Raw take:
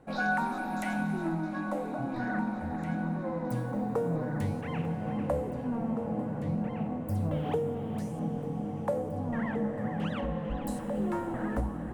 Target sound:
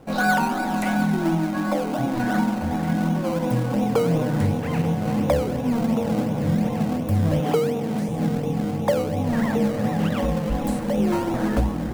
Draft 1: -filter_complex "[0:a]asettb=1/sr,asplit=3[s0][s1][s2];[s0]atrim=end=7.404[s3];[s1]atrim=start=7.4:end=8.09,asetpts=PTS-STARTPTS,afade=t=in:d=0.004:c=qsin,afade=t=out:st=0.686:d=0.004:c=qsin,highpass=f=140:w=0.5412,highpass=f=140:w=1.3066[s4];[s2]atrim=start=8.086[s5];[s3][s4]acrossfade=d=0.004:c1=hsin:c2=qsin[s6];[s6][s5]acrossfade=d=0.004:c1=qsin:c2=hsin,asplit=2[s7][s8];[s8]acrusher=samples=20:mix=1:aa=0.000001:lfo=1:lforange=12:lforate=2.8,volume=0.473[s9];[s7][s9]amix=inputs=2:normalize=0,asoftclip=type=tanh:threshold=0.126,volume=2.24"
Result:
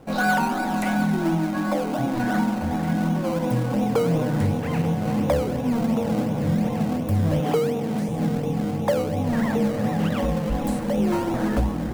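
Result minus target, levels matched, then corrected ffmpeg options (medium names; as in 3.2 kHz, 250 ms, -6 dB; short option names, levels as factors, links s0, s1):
saturation: distortion +14 dB
-filter_complex "[0:a]asettb=1/sr,asplit=3[s0][s1][s2];[s0]atrim=end=7.404[s3];[s1]atrim=start=7.4:end=8.09,asetpts=PTS-STARTPTS,afade=t=in:d=0.004:c=qsin,afade=t=out:st=0.686:d=0.004:c=qsin,highpass=f=140:w=0.5412,highpass=f=140:w=1.3066[s4];[s2]atrim=start=8.086[s5];[s3][s4]acrossfade=d=0.004:c1=hsin:c2=qsin[s6];[s6][s5]acrossfade=d=0.004:c1=qsin:c2=hsin,asplit=2[s7][s8];[s8]acrusher=samples=20:mix=1:aa=0.000001:lfo=1:lforange=12:lforate=2.8,volume=0.473[s9];[s7][s9]amix=inputs=2:normalize=0,asoftclip=type=tanh:threshold=0.316,volume=2.24"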